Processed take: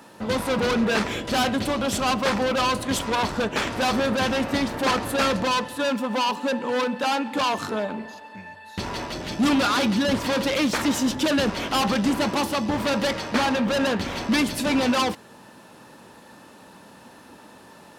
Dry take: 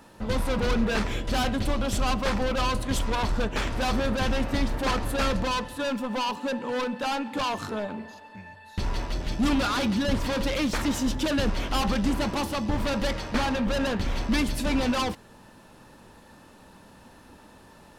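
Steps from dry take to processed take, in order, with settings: Bessel high-pass 170 Hz, order 2; trim +5 dB

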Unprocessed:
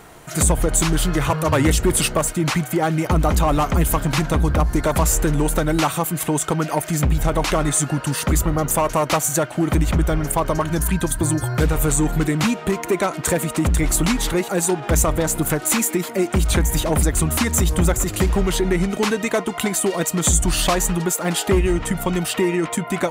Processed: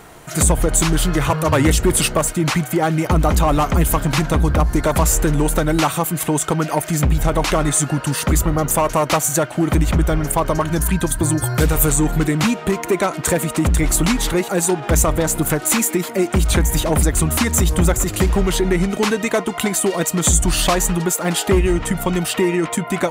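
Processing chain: 11.42–11.90 s: treble shelf 5.4 kHz +8.5 dB; trim +2 dB

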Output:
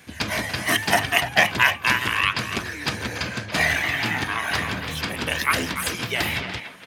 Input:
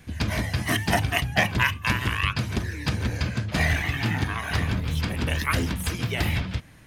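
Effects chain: high-pass 500 Hz 6 dB/octave; speakerphone echo 290 ms, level -9 dB; trim +5.5 dB

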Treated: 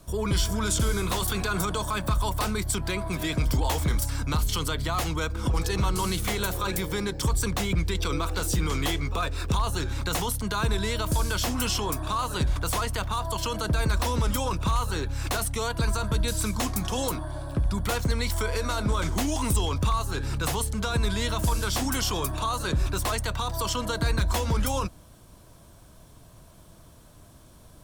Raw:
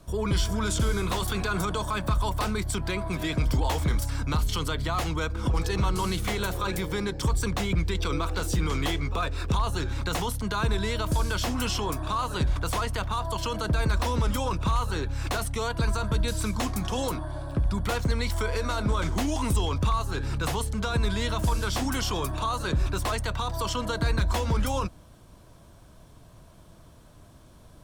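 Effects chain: treble shelf 6.7 kHz +8.5 dB

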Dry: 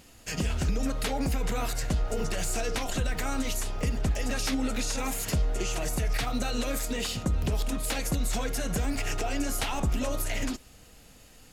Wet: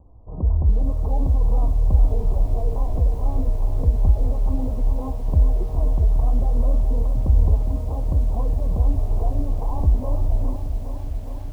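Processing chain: steep low-pass 1.1 kHz 96 dB/octave; resonant low shelf 120 Hz +9.5 dB, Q 1.5; bit-crushed delay 411 ms, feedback 80%, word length 8-bit, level -9.5 dB

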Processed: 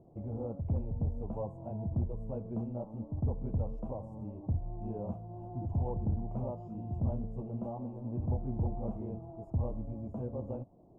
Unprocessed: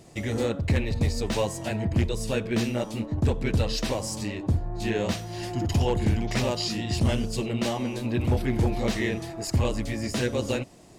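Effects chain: inverse Chebyshev low-pass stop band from 1.7 kHz, stop band 40 dB; dynamic bell 370 Hz, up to -8 dB, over -42 dBFS, Q 1.3; trim -7.5 dB

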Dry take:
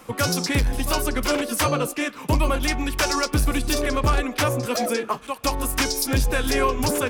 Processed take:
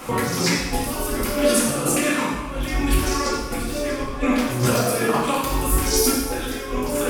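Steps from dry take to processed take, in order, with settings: 1.40–2.42 s: peaking EQ 15 kHz -14.5 dB 0.42 oct; compressor with a negative ratio -28 dBFS, ratio -0.5; plate-style reverb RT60 1.1 s, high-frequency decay 0.9×, DRR -5.5 dB; trim +1.5 dB

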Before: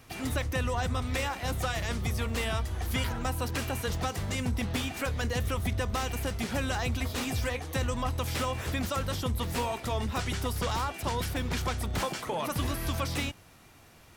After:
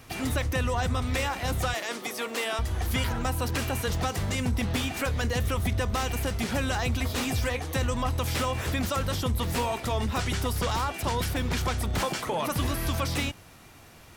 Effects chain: 1.74–2.59 s: high-pass 280 Hz 24 dB/octave; in parallel at -3 dB: peak limiter -27 dBFS, peak gain reduction 7.5 dB

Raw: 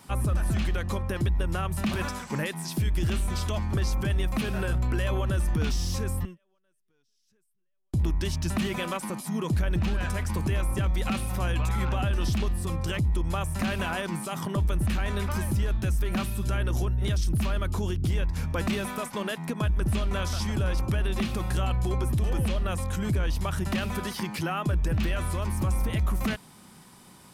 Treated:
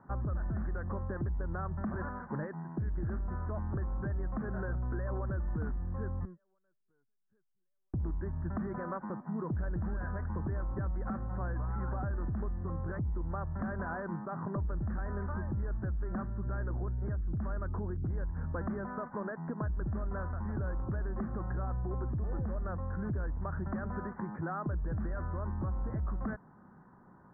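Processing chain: compression 3:1, threshold -28 dBFS, peak gain reduction 5 dB; steep low-pass 1.7 kHz 72 dB/octave; trim -4.5 dB

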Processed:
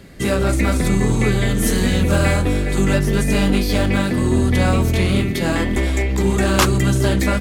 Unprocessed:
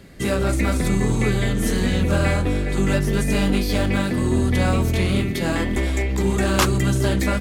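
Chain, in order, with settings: 1.49–2.85 s: treble shelf 7.3 kHz +6.5 dB; trim +3 dB

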